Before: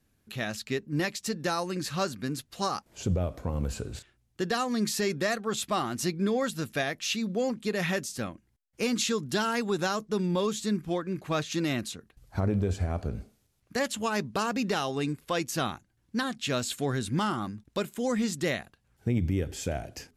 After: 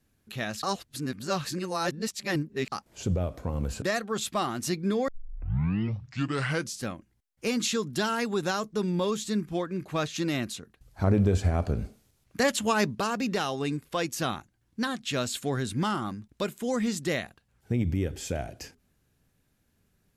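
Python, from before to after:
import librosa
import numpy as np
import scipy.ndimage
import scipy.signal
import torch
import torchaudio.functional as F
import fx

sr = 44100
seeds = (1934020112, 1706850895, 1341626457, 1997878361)

y = fx.edit(x, sr, fx.reverse_span(start_s=0.63, length_s=2.09),
    fx.cut(start_s=3.82, length_s=1.36),
    fx.tape_start(start_s=6.44, length_s=1.75),
    fx.clip_gain(start_s=12.4, length_s=1.91, db=4.5), tone=tone)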